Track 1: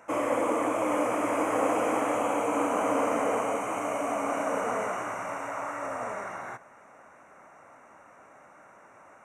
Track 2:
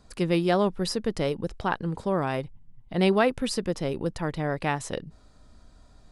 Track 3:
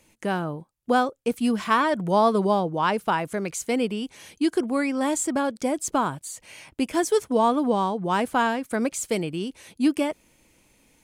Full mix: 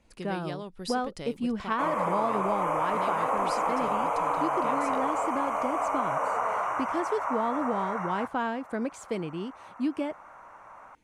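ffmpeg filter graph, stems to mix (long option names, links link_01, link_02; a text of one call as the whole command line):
ffmpeg -i stem1.wav -i stem2.wav -i stem3.wav -filter_complex "[0:a]equalizer=frequency=250:width_type=o:width=1:gain=-10,equalizer=frequency=1000:width_type=o:width=1:gain=11,equalizer=frequency=8000:width_type=o:width=1:gain=-6,adelay=1700,volume=-2dB[link_01];[1:a]acompressor=threshold=-25dB:ratio=5,adynamicequalizer=threshold=0.00447:dfrequency=1800:dqfactor=0.7:tfrequency=1800:tqfactor=0.7:attack=5:release=100:ratio=0.375:range=3:mode=boostabove:tftype=highshelf,volume=-10dB[link_02];[2:a]aemphasis=mode=reproduction:type=75fm,volume=-6dB[link_03];[link_01][link_02][link_03]amix=inputs=3:normalize=0,acompressor=threshold=-25dB:ratio=2.5" out.wav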